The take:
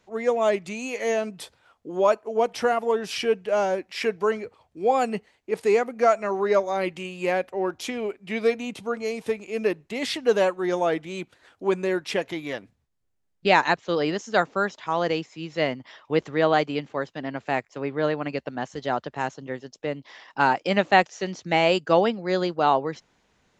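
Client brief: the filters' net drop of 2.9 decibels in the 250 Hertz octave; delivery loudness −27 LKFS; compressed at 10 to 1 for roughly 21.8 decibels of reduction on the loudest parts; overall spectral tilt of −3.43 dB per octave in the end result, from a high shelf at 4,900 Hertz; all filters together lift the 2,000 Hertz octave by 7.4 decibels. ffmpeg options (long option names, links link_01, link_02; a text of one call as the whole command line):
ffmpeg -i in.wav -af "equalizer=frequency=250:width_type=o:gain=-4.5,equalizer=frequency=2000:width_type=o:gain=8.5,highshelf=frequency=4900:gain=4,acompressor=threshold=-31dB:ratio=10,volume=9dB" out.wav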